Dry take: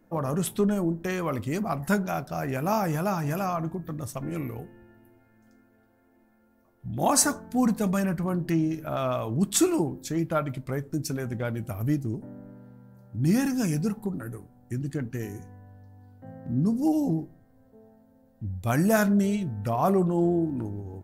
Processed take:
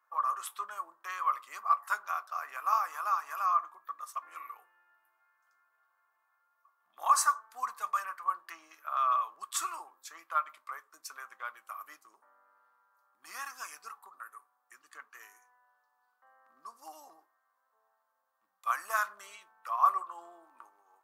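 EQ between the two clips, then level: ladder high-pass 1.1 kHz, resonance 85%; +3.5 dB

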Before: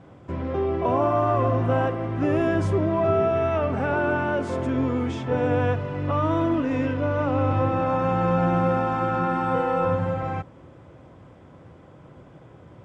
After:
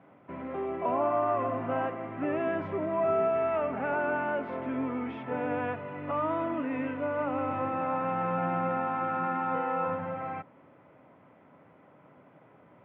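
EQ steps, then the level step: cabinet simulation 320–2300 Hz, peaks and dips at 350 Hz -10 dB, 500 Hz -8 dB, 760 Hz -4 dB, 1.1 kHz -5 dB, 1.6 kHz -6 dB; 0.0 dB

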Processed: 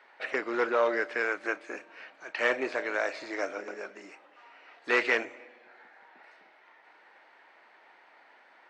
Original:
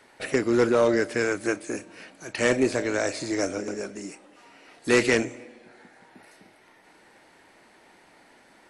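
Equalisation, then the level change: Bessel high-pass 1.2 kHz, order 2; tape spacing loss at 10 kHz 39 dB; +8.0 dB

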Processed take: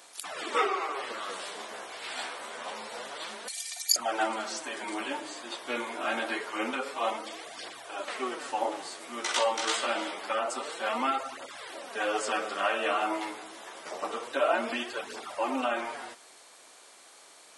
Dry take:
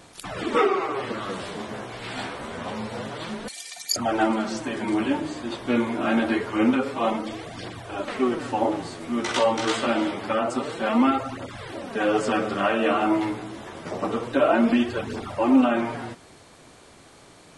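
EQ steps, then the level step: high-pass 570 Hz 12 dB/octave; treble shelf 5 kHz +8.5 dB; -4.0 dB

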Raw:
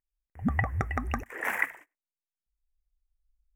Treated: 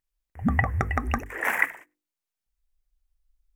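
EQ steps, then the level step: hum notches 50/100/150/200/250/300/350/400/450/500 Hz; +5.0 dB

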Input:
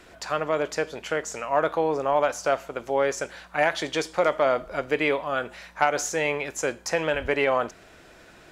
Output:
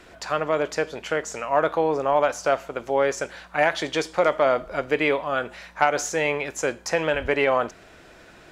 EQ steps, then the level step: treble shelf 7.6 kHz -4.5 dB; +2.0 dB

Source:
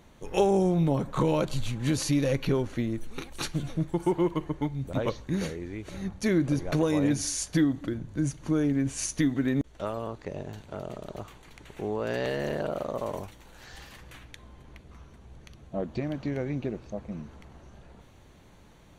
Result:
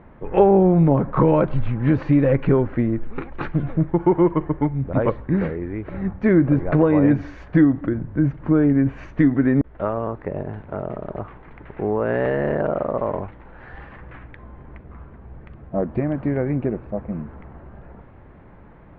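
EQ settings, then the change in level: low-pass 1.9 kHz 24 dB/octave; +9.0 dB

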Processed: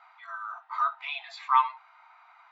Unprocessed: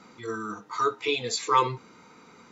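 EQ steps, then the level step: brick-wall FIR high-pass 650 Hz; distance through air 460 m; +2.5 dB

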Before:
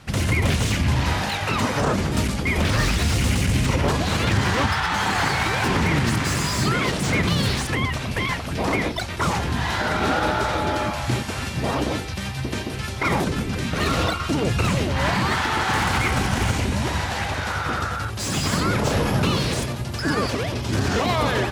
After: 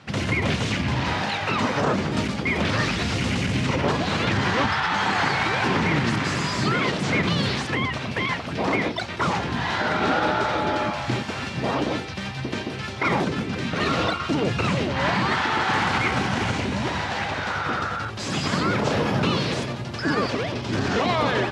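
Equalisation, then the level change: band-pass 130–4900 Hz; 0.0 dB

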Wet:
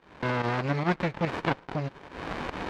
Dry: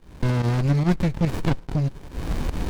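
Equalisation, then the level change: band-pass filter 1.8 kHz, Q 0.53; low-pass 2.3 kHz 6 dB/octave; +6.0 dB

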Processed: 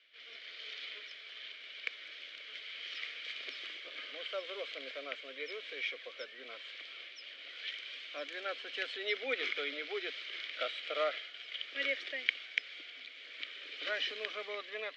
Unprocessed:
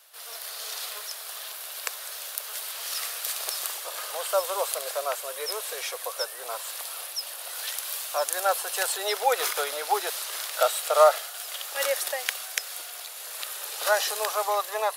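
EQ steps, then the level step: vowel filter i; low-pass 5.1 kHz 12 dB/octave; distance through air 150 m; +11.5 dB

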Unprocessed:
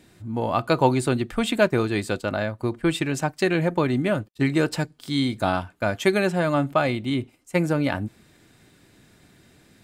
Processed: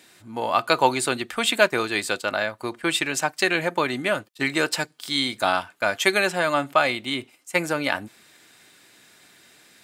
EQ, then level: high-pass 1.3 kHz 6 dB/octave; +7.5 dB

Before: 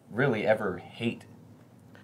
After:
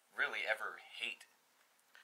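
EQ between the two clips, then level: high-pass 1.5 kHz 12 dB/octave; -2.0 dB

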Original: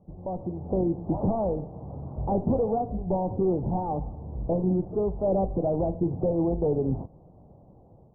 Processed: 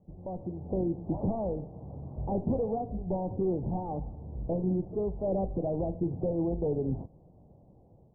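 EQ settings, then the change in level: Bessel low-pass 770 Hz, order 2; -4.0 dB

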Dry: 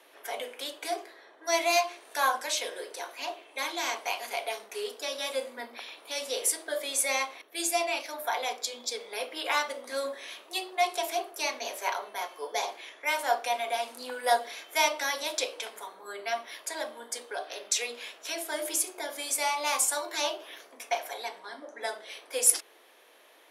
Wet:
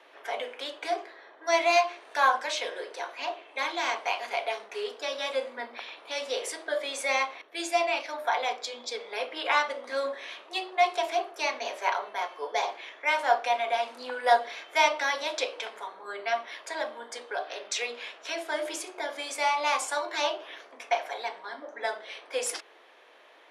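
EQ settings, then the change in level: tape spacing loss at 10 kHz 22 dB; bass shelf 470 Hz -10 dB; +8.0 dB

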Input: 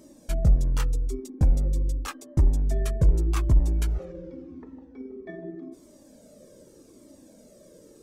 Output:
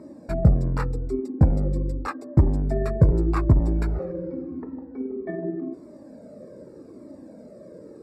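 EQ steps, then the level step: boxcar filter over 14 samples; high-pass 89 Hz 12 dB/octave; +9.0 dB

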